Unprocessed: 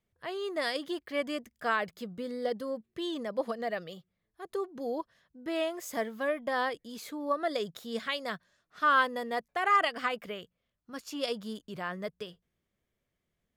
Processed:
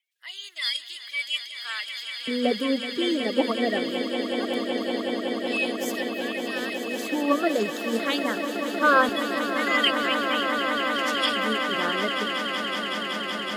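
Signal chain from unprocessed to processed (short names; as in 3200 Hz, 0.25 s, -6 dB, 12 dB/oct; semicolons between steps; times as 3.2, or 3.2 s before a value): bin magnitudes rounded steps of 30 dB; LFO high-pass square 0.22 Hz 260–2900 Hz; swelling echo 0.187 s, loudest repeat 8, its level -10.5 dB; gain +5.5 dB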